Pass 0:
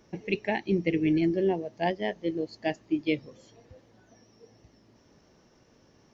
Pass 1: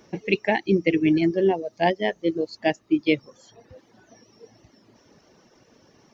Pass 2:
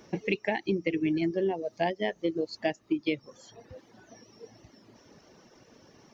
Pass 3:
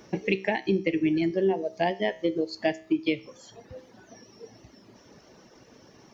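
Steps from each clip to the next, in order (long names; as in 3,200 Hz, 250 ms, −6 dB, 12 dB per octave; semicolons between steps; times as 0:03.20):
reverb reduction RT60 0.71 s; low-shelf EQ 90 Hz −11 dB; level +7.5 dB
downward compressor 6 to 1, threshold −25 dBFS, peak gain reduction 10.5 dB
tuned comb filter 64 Hz, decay 0.45 s, harmonics all, mix 50%; level +7 dB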